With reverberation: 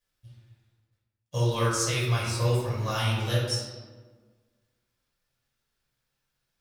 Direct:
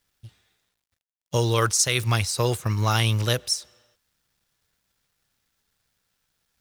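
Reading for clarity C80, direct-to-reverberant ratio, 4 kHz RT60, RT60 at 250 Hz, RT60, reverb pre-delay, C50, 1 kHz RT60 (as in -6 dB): 3.0 dB, -7.5 dB, 0.85 s, 1.8 s, 1.4 s, 3 ms, 0.0 dB, 1.3 s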